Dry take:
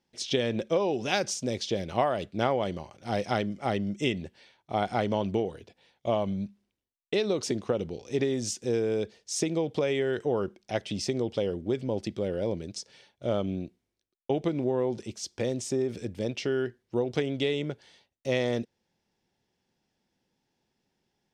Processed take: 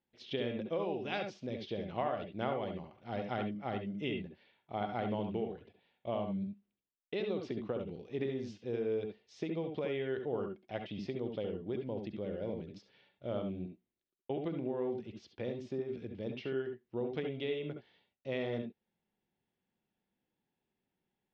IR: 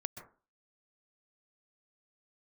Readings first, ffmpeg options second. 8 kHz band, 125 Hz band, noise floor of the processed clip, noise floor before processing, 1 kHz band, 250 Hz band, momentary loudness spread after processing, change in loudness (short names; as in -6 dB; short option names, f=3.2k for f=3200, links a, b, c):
under -30 dB, -8.5 dB, under -85 dBFS, -81 dBFS, -8.5 dB, -7.5 dB, 8 LU, -8.5 dB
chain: -filter_complex "[0:a]lowpass=f=3.6k:w=0.5412,lowpass=f=3.6k:w=1.3066[a];[1:a]atrim=start_sample=2205,afade=t=out:st=0.21:d=0.01,atrim=end_sample=9702,asetrate=83790,aresample=44100[b];[a][b]afir=irnorm=-1:irlink=0,volume=-2dB"